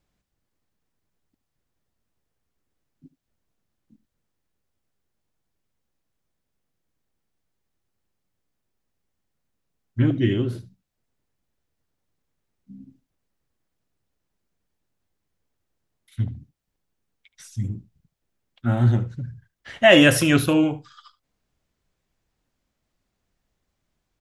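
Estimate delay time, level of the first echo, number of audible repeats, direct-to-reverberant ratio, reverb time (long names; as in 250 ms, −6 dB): 74 ms, −18.5 dB, 1, no reverb audible, no reverb audible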